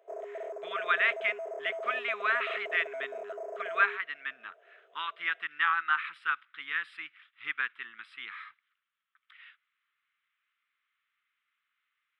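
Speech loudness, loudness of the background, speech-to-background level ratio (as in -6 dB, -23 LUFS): -31.5 LUFS, -40.0 LUFS, 8.5 dB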